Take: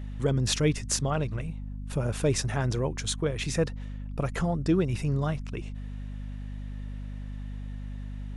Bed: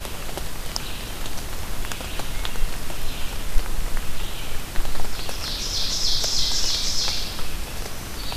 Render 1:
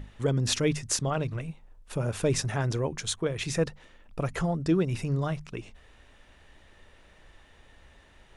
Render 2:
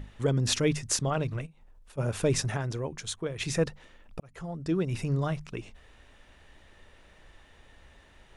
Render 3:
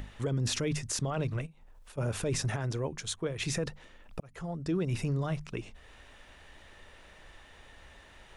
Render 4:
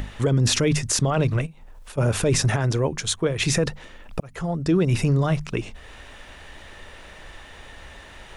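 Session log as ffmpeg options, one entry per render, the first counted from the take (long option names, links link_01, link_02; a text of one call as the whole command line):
ffmpeg -i in.wav -af "bandreject=frequency=50:width_type=h:width=6,bandreject=frequency=100:width_type=h:width=6,bandreject=frequency=150:width_type=h:width=6,bandreject=frequency=200:width_type=h:width=6,bandreject=frequency=250:width_type=h:width=6" out.wav
ffmpeg -i in.wav -filter_complex "[0:a]asplit=3[link_01][link_02][link_03];[link_01]afade=type=out:start_time=1.45:duration=0.02[link_04];[link_02]acompressor=threshold=-50dB:ratio=12:attack=3.2:release=140:knee=1:detection=peak,afade=type=in:start_time=1.45:duration=0.02,afade=type=out:start_time=1.97:duration=0.02[link_05];[link_03]afade=type=in:start_time=1.97:duration=0.02[link_06];[link_04][link_05][link_06]amix=inputs=3:normalize=0,asplit=4[link_07][link_08][link_09][link_10];[link_07]atrim=end=2.572[link_11];[link_08]atrim=start=2.568:end=3.402,asetpts=PTS-STARTPTS,volume=-4.5dB[link_12];[link_09]atrim=start=3.398:end=4.2,asetpts=PTS-STARTPTS,afade=type=out:start_time=0.798:duration=0.004:curve=hsin[link_13];[link_10]atrim=start=4.2,asetpts=PTS-STARTPTS,afade=type=in:duration=0.84[link_14];[link_11][link_12]acrossfade=duration=0.004:curve1=hsin:curve2=hsin[link_15];[link_13][link_14]concat=n=2:v=0:a=1[link_16];[link_15][link_16]acrossfade=duration=0.004:curve1=hsin:curve2=hsin" out.wav
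ffmpeg -i in.wav -filter_complex "[0:a]acrossover=split=500[link_01][link_02];[link_02]acompressor=mode=upward:threshold=-50dB:ratio=2.5[link_03];[link_01][link_03]amix=inputs=2:normalize=0,alimiter=limit=-23dB:level=0:latency=1:release=21" out.wav
ffmpeg -i in.wav -af "volume=11dB" out.wav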